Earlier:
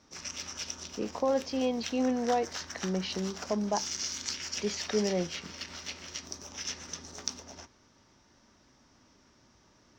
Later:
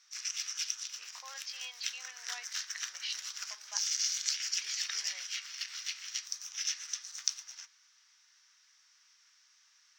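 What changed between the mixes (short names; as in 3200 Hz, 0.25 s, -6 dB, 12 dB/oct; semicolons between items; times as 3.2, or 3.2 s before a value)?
background: add high shelf 6100 Hz +7 dB; master: add HPF 1500 Hz 24 dB/oct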